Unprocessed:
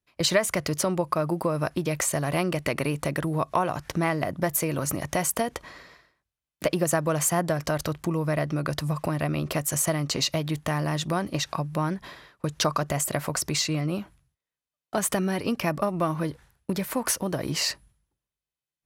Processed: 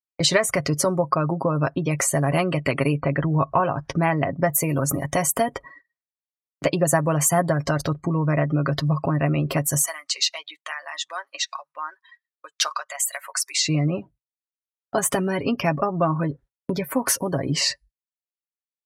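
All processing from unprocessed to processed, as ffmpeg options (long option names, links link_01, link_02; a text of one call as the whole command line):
ffmpeg -i in.wav -filter_complex "[0:a]asettb=1/sr,asplit=3[link_01][link_02][link_03];[link_01]atrim=end=2.954[link_04];[link_02]atrim=start=2.95:end=3.6,asetpts=PTS-STARTPTS,afade=type=in:duration=0.004:curve=qsin,afade=type=out:start_time=0.646:duration=0.004:curve=qsin,acrossover=split=4800[link_05][link_06];[link_06]acompressor=threshold=-55dB:ratio=4:attack=1:release=60[link_07];[link_05][link_07]amix=inputs=2:normalize=0,asubboost=boost=6.5:cutoff=170[link_08];[link_03]atrim=start=3.596[link_09];[link_04][link_08]acrossfade=duration=0.004:curve1=hsin:curve2=qsin[link_10];[link_10][link_09]acrossfade=duration=0.004:curve1=qsin:curve2=hsin,asettb=1/sr,asplit=3[link_11][link_12][link_13];[link_11]atrim=end=9.864[link_14];[link_12]atrim=start=9.86:end=13.6,asetpts=PTS-STARTPTS,afade=type=in:duration=0.004:curve=qsin,afade=type=out:start_time=3.736:duration=0.004:curve=qsin,highpass=1300,acrusher=bits=4:mode=log:mix=0:aa=0.000001[link_15];[link_13]atrim=start=13.596[link_16];[link_14][link_15]acrossfade=duration=0.004:curve1=hsin:curve2=qsin[link_17];[link_17][link_16]acrossfade=duration=0.004:curve1=qsin:curve2=hsin,afftdn=noise_reduction=33:noise_floor=-38,agate=range=-18dB:threshold=-52dB:ratio=16:detection=peak,aecho=1:1:7.3:0.5,volume=3.5dB" out.wav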